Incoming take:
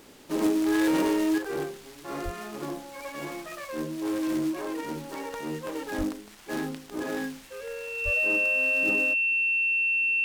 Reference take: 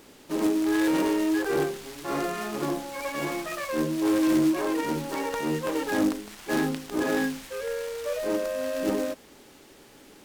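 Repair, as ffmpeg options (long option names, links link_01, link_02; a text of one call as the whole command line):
ffmpeg -i in.wav -filter_complex "[0:a]bandreject=frequency=2700:width=30,asplit=3[link_01][link_02][link_03];[link_01]afade=type=out:start_time=2.24:duration=0.02[link_04];[link_02]highpass=frequency=140:width=0.5412,highpass=frequency=140:width=1.3066,afade=type=in:start_time=2.24:duration=0.02,afade=type=out:start_time=2.36:duration=0.02[link_05];[link_03]afade=type=in:start_time=2.36:duration=0.02[link_06];[link_04][link_05][link_06]amix=inputs=3:normalize=0,asplit=3[link_07][link_08][link_09];[link_07]afade=type=out:start_time=5.97:duration=0.02[link_10];[link_08]highpass=frequency=140:width=0.5412,highpass=frequency=140:width=1.3066,afade=type=in:start_time=5.97:duration=0.02,afade=type=out:start_time=6.09:duration=0.02[link_11];[link_09]afade=type=in:start_time=6.09:duration=0.02[link_12];[link_10][link_11][link_12]amix=inputs=3:normalize=0,asplit=3[link_13][link_14][link_15];[link_13]afade=type=out:start_time=8.04:duration=0.02[link_16];[link_14]highpass=frequency=140:width=0.5412,highpass=frequency=140:width=1.3066,afade=type=in:start_time=8.04:duration=0.02,afade=type=out:start_time=8.16:duration=0.02[link_17];[link_15]afade=type=in:start_time=8.16:duration=0.02[link_18];[link_16][link_17][link_18]amix=inputs=3:normalize=0,asetnsamples=nb_out_samples=441:pad=0,asendcmd='1.38 volume volume 6dB',volume=0dB" out.wav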